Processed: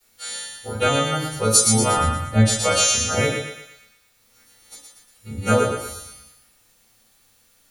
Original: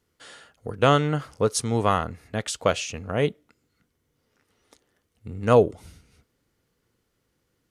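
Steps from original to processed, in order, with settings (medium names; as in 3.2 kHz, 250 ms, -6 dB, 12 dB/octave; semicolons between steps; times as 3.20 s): partials quantised in pitch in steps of 2 st; compression, threshold -21 dBFS, peak gain reduction 10 dB; treble shelf 2.5 kHz +6.5 dB; bit crusher 10-bit; 1.96–2.62 s: tilt EQ -2.5 dB/octave; thinning echo 117 ms, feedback 51%, high-pass 600 Hz, level -4 dB; reverberation RT60 0.35 s, pre-delay 4 ms, DRR -6.5 dB; trim -5 dB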